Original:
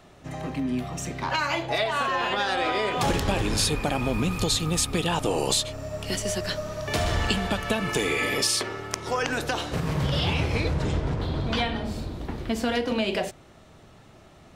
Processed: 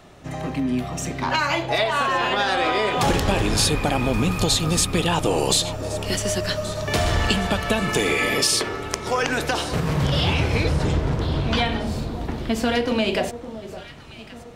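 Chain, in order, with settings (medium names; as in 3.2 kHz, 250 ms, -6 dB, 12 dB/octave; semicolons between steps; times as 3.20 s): echo whose repeats swap between lows and highs 563 ms, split 1.1 kHz, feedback 65%, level -13 dB; in parallel at -10 dB: saturation -15 dBFS, distortion -22 dB; on the sum: trim +2 dB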